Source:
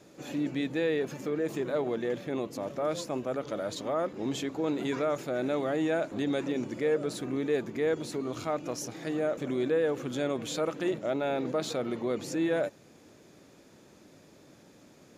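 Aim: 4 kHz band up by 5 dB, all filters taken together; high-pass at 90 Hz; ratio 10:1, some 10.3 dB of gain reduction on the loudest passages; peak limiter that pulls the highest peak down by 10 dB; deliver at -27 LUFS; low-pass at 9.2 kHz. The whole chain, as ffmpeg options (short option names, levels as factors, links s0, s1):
-af "highpass=90,lowpass=9200,equalizer=f=4000:t=o:g=6,acompressor=threshold=0.02:ratio=10,volume=5.62,alimiter=limit=0.126:level=0:latency=1"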